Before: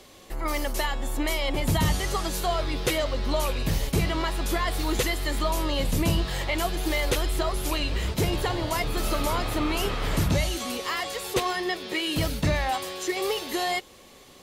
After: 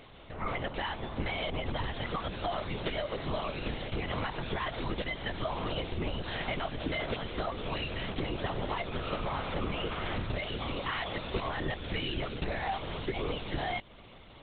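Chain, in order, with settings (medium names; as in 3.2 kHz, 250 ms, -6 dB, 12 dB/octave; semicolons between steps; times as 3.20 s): high-pass 150 Hz; compression, threshold -30 dBFS, peak gain reduction 9.5 dB; LPC vocoder at 8 kHz whisper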